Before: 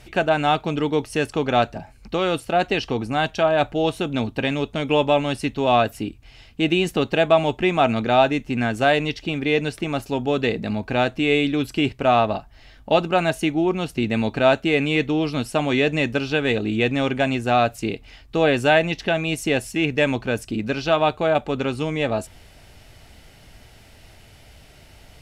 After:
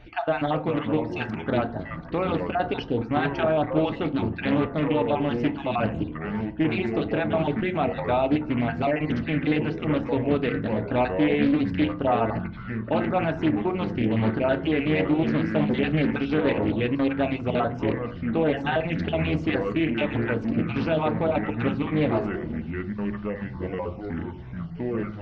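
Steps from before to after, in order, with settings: random spectral dropouts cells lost 31%; limiter -14 dBFS, peak gain reduction 9 dB; Gaussian blur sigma 2.4 samples; FDN reverb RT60 0.44 s, low-frequency decay 1.4×, high-frequency decay 0.4×, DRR 7.5 dB; echoes that change speed 0.301 s, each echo -5 st, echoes 3, each echo -6 dB; Doppler distortion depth 0.28 ms; gain -1.5 dB

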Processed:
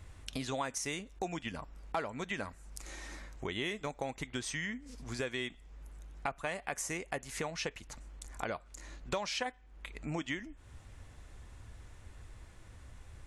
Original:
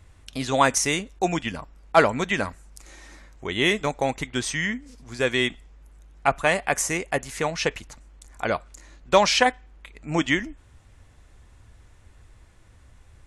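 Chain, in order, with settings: compressor 4:1, threshold -37 dBFS, peak gain reduction 21.5 dB

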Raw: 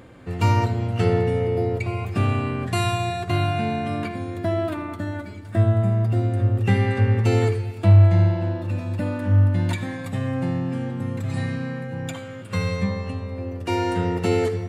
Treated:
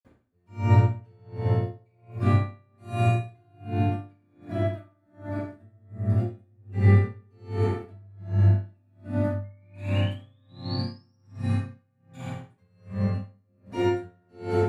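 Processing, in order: painted sound rise, 9.38–11.1, 2100–5700 Hz -33 dBFS; reverb RT60 2.5 s, pre-delay 47 ms; dB-linear tremolo 1.3 Hz, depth 40 dB

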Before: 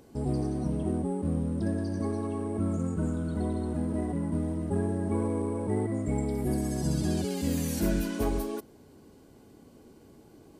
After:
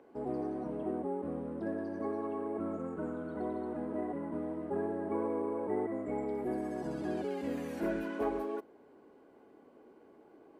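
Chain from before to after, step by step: three-band isolator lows -23 dB, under 290 Hz, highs -23 dB, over 2300 Hz

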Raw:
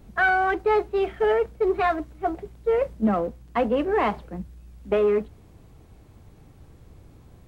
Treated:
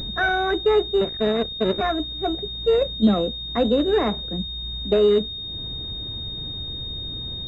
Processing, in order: 1.01–1.81 cycle switcher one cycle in 2, muted; bell 930 Hz -11 dB 0.99 oct; upward compressor, threshold -32 dBFS; pulse-width modulation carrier 3700 Hz; gain +5.5 dB

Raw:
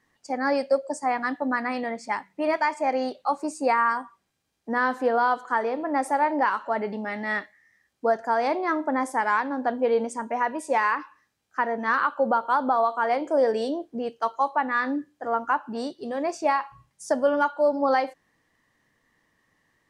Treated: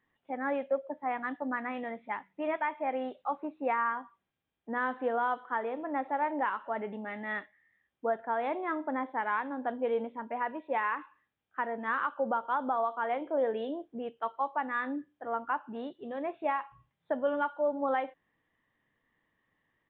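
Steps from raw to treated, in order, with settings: downsampling 8000 Hz; gain -8 dB

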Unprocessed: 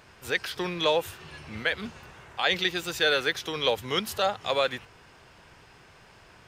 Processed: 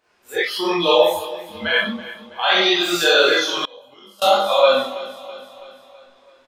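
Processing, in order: resonant low shelf 210 Hz -10 dB, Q 1.5; Schroeder reverb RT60 0.74 s, combs from 31 ms, DRR -6.5 dB; in parallel at -2 dB: limiter -13 dBFS, peak gain reduction 9 dB; on the sum: spectral noise reduction 19 dB; chorus voices 2, 1.4 Hz, delay 22 ms, depth 3 ms; on a send: feedback echo 0.328 s, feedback 54%, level -16.5 dB; 3.56–4.22 on the sum: flipped gate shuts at -14 dBFS, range -28 dB; gain +3 dB

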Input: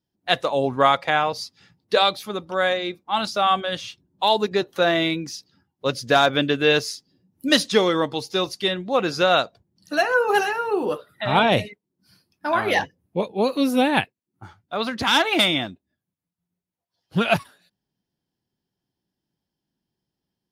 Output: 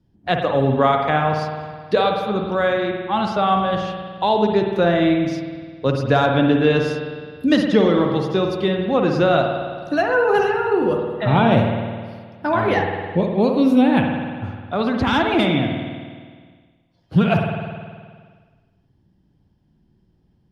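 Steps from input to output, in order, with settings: RIAA curve playback; spring tank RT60 1.3 s, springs 52 ms, chirp 50 ms, DRR 3 dB; three-band squash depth 40%; gain -1 dB

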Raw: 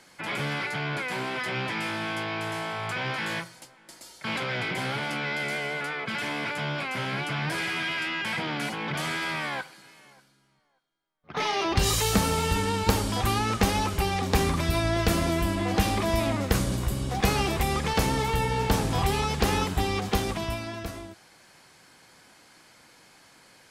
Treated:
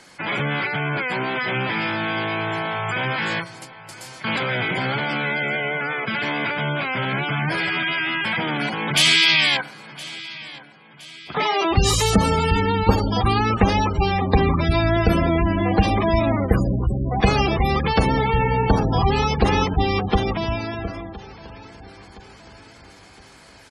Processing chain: 8.96–9.57 resonant high shelf 2000 Hz +12 dB, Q 1.5; feedback echo 1.016 s, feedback 47%, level -19 dB; spectral gate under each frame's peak -20 dB strong; gain +7 dB

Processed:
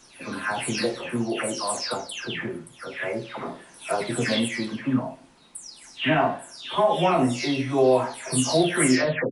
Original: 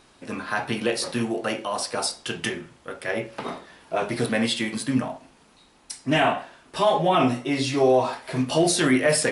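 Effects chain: spectral delay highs early, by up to 0.348 s

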